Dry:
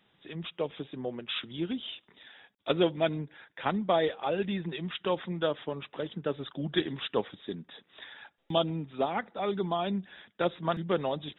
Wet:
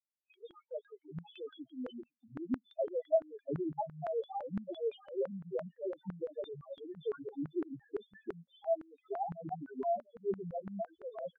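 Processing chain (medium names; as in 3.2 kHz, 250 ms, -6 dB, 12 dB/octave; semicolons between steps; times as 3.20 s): waveshaping leveller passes 3; compression 4:1, threshold -25 dBFS, peak gain reduction 7.5 dB; three bands offset in time highs, mids, lows 120/800 ms, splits 470/2000 Hz; reverb removal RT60 0.75 s; loudest bins only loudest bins 1; 2.84–3.72 s: tilt EQ -3.5 dB/octave; expander -52 dBFS; LFO band-pass saw down 5.9 Hz 330–1500 Hz; trim +8 dB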